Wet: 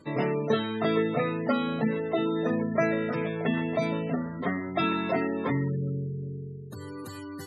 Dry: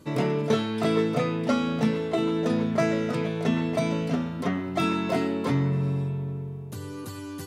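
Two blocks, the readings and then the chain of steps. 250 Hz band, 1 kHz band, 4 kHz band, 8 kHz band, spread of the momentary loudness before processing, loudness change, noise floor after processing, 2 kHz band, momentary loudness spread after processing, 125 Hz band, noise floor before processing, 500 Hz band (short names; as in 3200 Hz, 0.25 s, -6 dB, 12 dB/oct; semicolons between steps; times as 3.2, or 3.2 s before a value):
-3.0 dB, -0.5 dB, -3.5 dB, under -10 dB, 11 LU, -2.0 dB, -40 dBFS, +1.0 dB, 13 LU, -4.5 dB, -37 dBFS, -1.0 dB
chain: bell 1800 Hz +5.5 dB 0.26 oct; spectral gate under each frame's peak -25 dB strong; low shelf 240 Hz -6 dB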